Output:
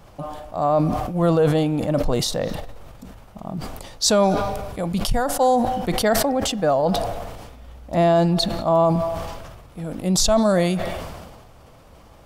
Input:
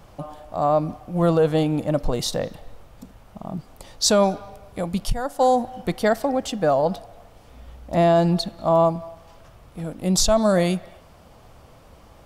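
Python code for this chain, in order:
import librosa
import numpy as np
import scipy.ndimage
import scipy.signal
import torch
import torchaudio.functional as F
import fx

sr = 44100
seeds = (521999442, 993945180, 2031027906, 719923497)

y = fx.sustainer(x, sr, db_per_s=36.0)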